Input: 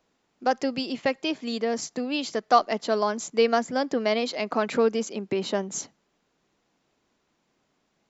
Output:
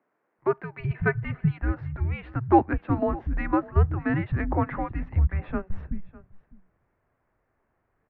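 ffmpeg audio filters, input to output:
ffmpeg -i in.wav -filter_complex "[0:a]asettb=1/sr,asplit=3[link_01][link_02][link_03];[link_01]atrim=end=0.784[link_04];[link_02]atrim=start=0.78:end=1.57,asetpts=PTS-STARTPTS,afade=type=in:duration=0.004:curve=qsin,afade=type=out:start_time=0.786:duration=0.004:curve=qsin,aecho=1:1:3.7:0.73,atrim=end_sample=34839[link_05];[link_03]atrim=start=1.566[link_06];[link_04][link_05]acrossfade=duration=0.004:curve1=hsin:curve2=qsin[link_07];[link_07][link_06]acrossfade=duration=0.004:curve1=qsin:curve2=hsin,asplit=2[link_08][link_09];[link_09]aecho=0:1:603:0.0944[link_10];[link_08][link_10]amix=inputs=2:normalize=0,highpass=frequency=290:width_type=q:width=0.5412,highpass=frequency=290:width_type=q:width=1.307,lowpass=frequency=2300:width_type=q:width=0.5176,lowpass=frequency=2300:width_type=q:width=0.7071,lowpass=frequency=2300:width_type=q:width=1.932,afreqshift=-380,acrossover=split=200[link_11][link_12];[link_11]adelay=380[link_13];[link_13][link_12]amix=inputs=2:normalize=0,volume=2dB" out.wav

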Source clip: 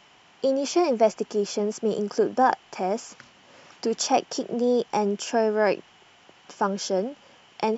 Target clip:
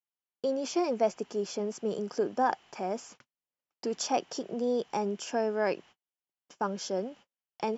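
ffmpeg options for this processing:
ffmpeg -i in.wav -af "agate=range=-43dB:threshold=-44dB:ratio=16:detection=peak,volume=-7dB" out.wav

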